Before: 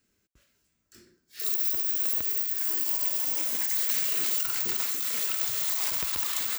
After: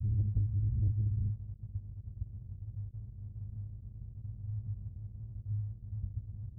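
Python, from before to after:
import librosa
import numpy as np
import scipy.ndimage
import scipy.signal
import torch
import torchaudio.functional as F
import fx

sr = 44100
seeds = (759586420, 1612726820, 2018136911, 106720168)

y = np.sign(x) * np.sqrt(np.mean(np.square(x)))
y = fx.octave_resonator(y, sr, note='G#', decay_s=0.25)
y = fx.add_hum(y, sr, base_hz=50, snr_db=26)
y = fx.hpss(y, sr, part='harmonic', gain_db=-10)
y = scipy.signal.sosfilt(scipy.signal.cheby2(4, 80, [650.0, 5200.0], 'bandstop', fs=sr, output='sos'), y)
y = fx.peak_eq(y, sr, hz=150.0, db=11.0, octaves=1.3)
y = fx.leveller(y, sr, passes=2)
y = fx.riaa(y, sr, side='playback')
y = y * 10.0 ** (4.5 / 20.0)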